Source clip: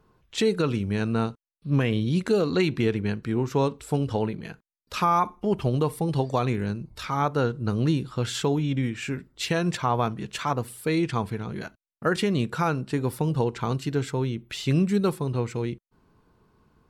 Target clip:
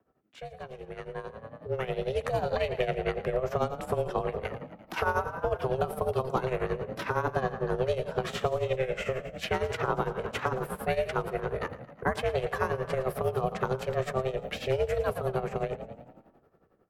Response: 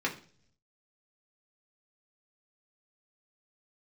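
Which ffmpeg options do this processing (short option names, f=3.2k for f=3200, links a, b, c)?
-filter_complex "[0:a]equalizer=f=250:t=o:w=1:g=5,equalizer=f=500:t=o:w=1:g=-3,equalizer=f=4k:t=o:w=1:g=-9,equalizer=f=8k:t=o:w=1:g=-11,aeval=exprs='val(0)*sin(2*PI*280*n/s)':c=same,afreqshift=-19,asplit=7[a][b][c][d][e][f][g];[b]adelay=113,afreqshift=34,volume=-14dB[h];[c]adelay=226,afreqshift=68,volume=-19dB[i];[d]adelay=339,afreqshift=102,volume=-24.1dB[j];[e]adelay=452,afreqshift=136,volume=-29.1dB[k];[f]adelay=565,afreqshift=170,volume=-34.1dB[l];[g]adelay=678,afreqshift=204,volume=-39.2dB[m];[a][h][i][j][k][l][m]amix=inputs=7:normalize=0,tremolo=f=11:d=0.78,asplit=2[n][o];[1:a]atrim=start_sample=2205,asetrate=22050,aresample=44100[p];[o][p]afir=irnorm=-1:irlink=0,volume=-29dB[q];[n][q]amix=inputs=2:normalize=0,acrossover=split=230|780|3900[r][s][t][u];[r]acompressor=threshold=-42dB:ratio=4[v];[s]acompressor=threshold=-41dB:ratio=4[w];[t]acompressor=threshold=-42dB:ratio=4[x];[u]acompressor=threshold=-56dB:ratio=4[y];[v][w][x][y]amix=inputs=4:normalize=0,lowshelf=f=68:g=-11.5,dynaudnorm=f=260:g=13:m=14.5dB,volume=-4.5dB"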